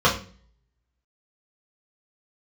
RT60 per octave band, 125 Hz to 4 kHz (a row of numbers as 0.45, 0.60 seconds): 0.65, 0.60, 0.45, 0.35, 0.40, 0.40 seconds